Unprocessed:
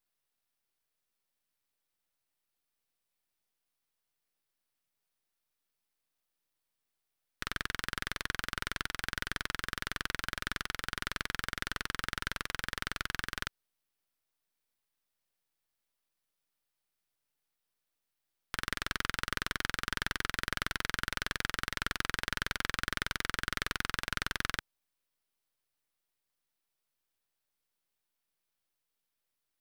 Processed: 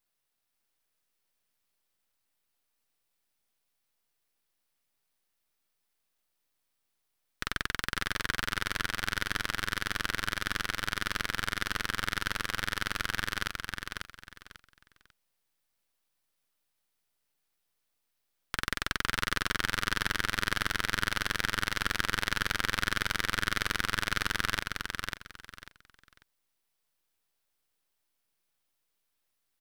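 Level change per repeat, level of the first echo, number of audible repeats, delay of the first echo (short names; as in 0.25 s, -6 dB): -13.0 dB, -4.5 dB, 3, 0.544 s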